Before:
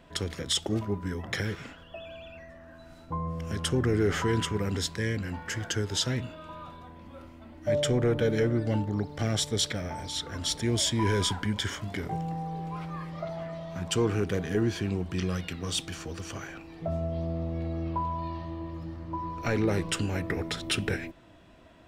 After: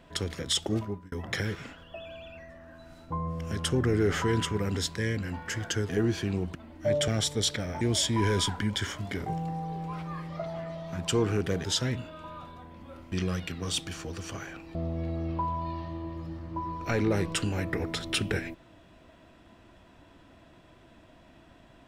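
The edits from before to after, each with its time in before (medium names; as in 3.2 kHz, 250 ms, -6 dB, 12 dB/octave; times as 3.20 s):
0.78–1.12 s: fade out
5.89–7.37 s: swap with 14.47–15.13 s
7.90–9.24 s: delete
9.97–10.64 s: delete
16.76–17.32 s: delete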